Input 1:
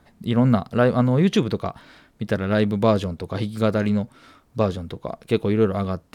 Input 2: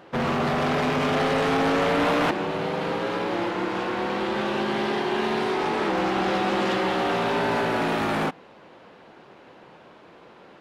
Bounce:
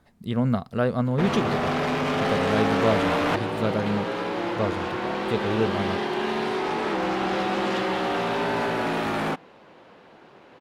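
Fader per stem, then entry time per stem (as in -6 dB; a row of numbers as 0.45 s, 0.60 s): -5.5 dB, -1.5 dB; 0.00 s, 1.05 s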